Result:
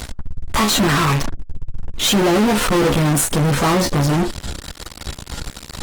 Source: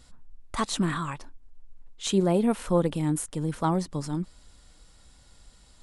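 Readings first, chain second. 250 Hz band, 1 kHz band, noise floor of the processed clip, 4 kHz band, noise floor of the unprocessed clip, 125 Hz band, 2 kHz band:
+9.0 dB, +12.0 dB, -39 dBFS, +17.0 dB, -56 dBFS, +11.5 dB, +18.0 dB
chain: high shelf 8800 Hz -12 dB; resonator 70 Hz, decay 0.16 s, harmonics all, mix 100%; in parallel at -4 dB: fuzz box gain 54 dB, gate -58 dBFS; on the sum: upward compressor, threshold -27 dBFS; gain +1.5 dB; Opus 20 kbps 48000 Hz

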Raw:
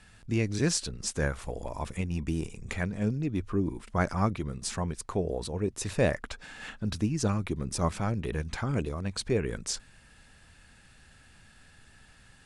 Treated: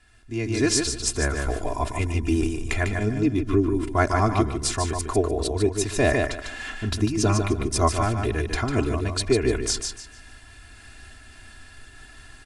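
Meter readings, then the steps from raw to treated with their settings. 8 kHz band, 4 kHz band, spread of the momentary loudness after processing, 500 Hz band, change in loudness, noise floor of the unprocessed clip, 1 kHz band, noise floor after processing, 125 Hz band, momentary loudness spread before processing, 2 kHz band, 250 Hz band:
+8.5 dB, +8.5 dB, 7 LU, +8.0 dB, +7.0 dB, -57 dBFS, +9.5 dB, -47 dBFS, +5.5 dB, 8 LU, +8.5 dB, +6.5 dB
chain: on a send: feedback echo 0.149 s, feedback 27%, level -5.5 dB; on the sum: AGC gain up to 11.5 dB; comb 2.9 ms, depth 87%; noise-modulated level, depth 50%; gain -3 dB

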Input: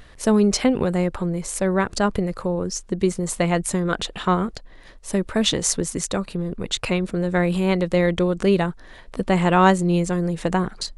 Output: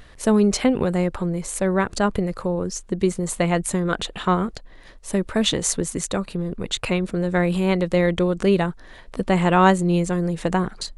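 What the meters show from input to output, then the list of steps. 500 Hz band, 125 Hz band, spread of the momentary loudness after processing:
0.0 dB, 0.0 dB, 9 LU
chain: dynamic EQ 5300 Hz, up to -5 dB, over -46 dBFS, Q 3.4

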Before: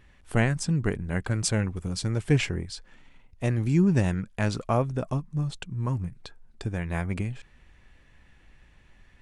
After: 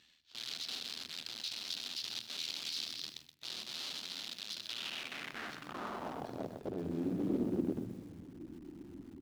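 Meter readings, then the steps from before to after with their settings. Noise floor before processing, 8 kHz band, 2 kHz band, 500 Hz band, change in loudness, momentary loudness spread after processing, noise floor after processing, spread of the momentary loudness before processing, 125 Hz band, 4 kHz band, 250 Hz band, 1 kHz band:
-57 dBFS, -10.5 dB, -11.5 dB, -12.0 dB, -12.0 dB, 14 LU, -63 dBFS, 11 LU, -23.5 dB, +2.0 dB, -11.0 dB, -11.0 dB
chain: low-pass sweep 6600 Hz -> 340 Hz, 6.02–8.4; speakerphone echo 0.25 s, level -9 dB; shoebox room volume 1100 m³, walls mixed, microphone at 0.58 m; reverse; compressor 8:1, threshold -33 dBFS, peak gain reduction 18 dB; reverse; limiter -30.5 dBFS, peak gain reduction 8.5 dB; sample-rate reducer 10000 Hz; high shelf 2200 Hz -6.5 dB; AM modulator 80 Hz, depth 40%; wrapped overs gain 39 dB; band-pass sweep 4000 Hz -> 330 Hz, 4.59–7.05; graphic EQ 250/500/1000/2000/8000 Hz +6/-6/-7/-8/-5 dB; lo-fi delay 0.125 s, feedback 35%, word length 12-bit, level -9.5 dB; gain +17.5 dB

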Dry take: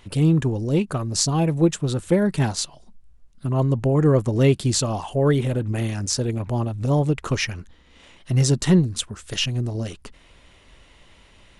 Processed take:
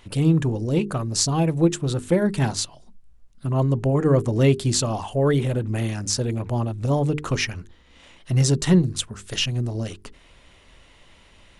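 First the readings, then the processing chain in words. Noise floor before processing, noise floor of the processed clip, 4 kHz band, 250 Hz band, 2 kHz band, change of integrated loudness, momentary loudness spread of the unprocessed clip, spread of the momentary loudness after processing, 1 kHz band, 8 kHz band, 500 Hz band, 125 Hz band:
-53 dBFS, -53 dBFS, 0.0 dB, -1.0 dB, 0.0 dB, -0.5 dB, 10 LU, 9 LU, 0.0 dB, 0.0 dB, -0.5 dB, -0.5 dB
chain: notches 50/100/150/200/250/300/350/400/450 Hz

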